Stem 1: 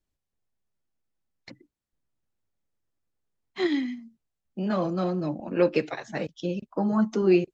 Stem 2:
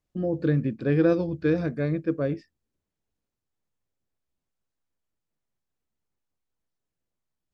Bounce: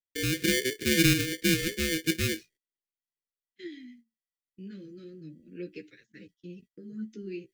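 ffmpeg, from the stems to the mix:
ffmpeg -i stem1.wav -i stem2.wav -filter_complex "[0:a]flanger=delay=9.1:depth=6.8:regen=16:speed=0.33:shape=triangular,volume=-12.5dB[link_01];[1:a]aeval=exprs='val(0)*sgn(sin(2*PI*650*n/s))':channel_layout=same,volume=1dB[link_02];[link_01][link_02]amix=inputs=2:normalize=0,agate=range=-19dB:threshold=-54dB:ratio=16:detection=peak,asuperstop=centerf=850:order=8:qfactor=0.7" out.wav

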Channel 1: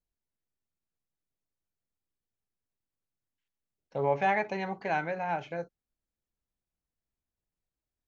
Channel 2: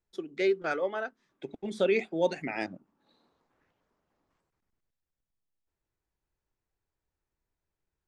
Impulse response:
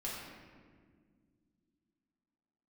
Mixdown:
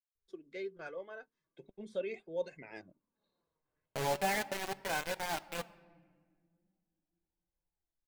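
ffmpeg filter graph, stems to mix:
-filter_complex "[0:a]acrusher=bits=4:mix=0:aa=0.000001,volume=-2.5dB,asplit=2[link_01][link_02];[link_02]volume=-17dB[link_03];[1:a]lowshelf=frequency=320:gain=6.5,aecho=1:1:1.9:0.41,adelay=150,volume=-12dB[link_04];[2:a]atrim=start_sample=2205[link_05];[link_03][link_05]afir=irnorm=-1:irlink=0[link_06];[link_01][link_04][link_06]amix=inputs=3:normalize=0,flanger=delay=1.9:depth=4.7:regen=50:speed=0.4:shape=sinusoidal"

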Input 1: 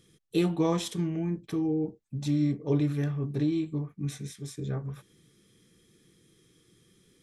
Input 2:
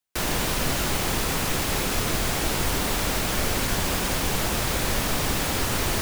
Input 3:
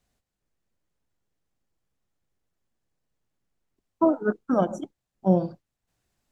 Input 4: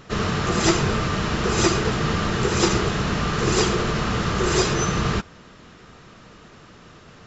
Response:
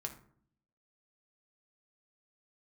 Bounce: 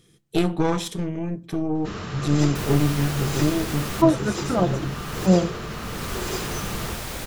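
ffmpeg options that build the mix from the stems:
-filter_complex "[0:a]aeval=exprs='0.188*(cos(1*acos(clip(val(0)/0.188,-1,1)))-cos(1*PI/2))+0.0376*(cos(4*acos(clip(val(0)/0.188,-1,1)))-cos(4*PI/2))':channel_layout=same,volume=2dB,asplit=2[link_01][link_02];[link_02]volume=-9.5dB[link_03];[1:a]adelay=2400,volume=-7dB[link_04];[2:a]aecho=1:1:5.9:0.58,volume=0.5dB,asplit=2[link_05][link_06];[3:a]asoftclip=type=tanh:threshold=-11dB,adelay=1750,volume=-9dB[link_07];[link_06]apad=whole_len=371003[link_08];[link_04][link_08]sidechaincompress=threshold=-36dB:ratio=8:attack=12:release=436[link_09];[4:a]atrim=start_sample=2205[link_10];[link_03][link_10]afir=irnorm=-1:irlink=0[link_11];[link_01][link_09][link_05][link_07][link_11]amix=inputs=5:normalize=0"

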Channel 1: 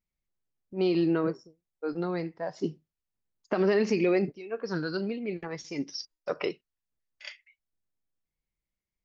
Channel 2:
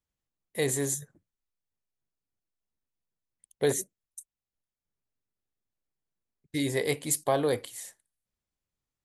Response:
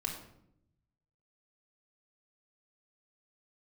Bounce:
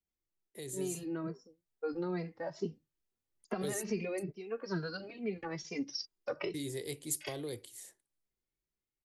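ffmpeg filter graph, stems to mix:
-filter_complex "[0:a]acrossover=split=140[link_01][link_02];[link_02]acompressor=threshold=-31dB:ratio=6[link_03];[link_01][link_03]amix=inputs=2:normalize=0,asplit=2[link_04][link_05];[link_05]adelay=2.6,afreqshift=2.3[link_06];[link_04][link_06]amix=inputs=2:normalize=1,volume=-5dB[link_07];[1:a]equalizer=frequency=360:width_type=o:width=0.73:gain=14,acrossover=split=150|3000[link_08][link_09][link_10];[link_09]acompressor=threshold=-40dB:ratio=2.5[link_11];[link_08][link_11][link_10]amix=inputs=3:normalize=0,volume=-13dB[link_12];[link_07][link_12]amix=inputs=2:normalize=0,dynaudnorm=framelen=370:gausssize=7:maxgain=5.5dB"

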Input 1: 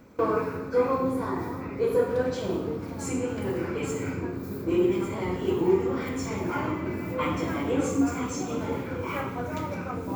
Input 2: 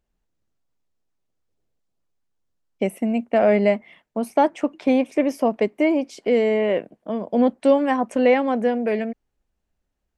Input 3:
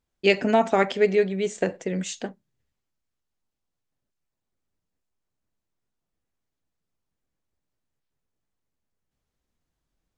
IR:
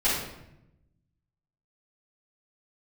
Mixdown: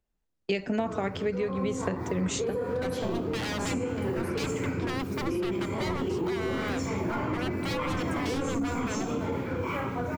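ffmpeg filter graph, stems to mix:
-filter_complex "[0:a]alimiter=limit=-20.5dB:level=0:latency=1:release=26,highshelf=frequency=11000:gain=-10,adelay=600,volume=1.5dB[link_01];[1:a]aeval=exprs='0.0668*(abs(mod(val(0)/0.0668+3,4)-2)-1)':channel_layout=same,volume=-5dB[link_02];[2:a]agate=range=-23dB:threshold=-38dB:ratio=16:detection=peak,adelay=250,volume=2.5dB[link_03];[link_01][link_02][link_03]amix=inputs=3:normalize=0,acrossover=split=150[link_04][link_05];[link_05]acompressor=threshold=-27dB:ratio=10[link_06];[link_04][link_06]amix=inputs=2:normalize=0"

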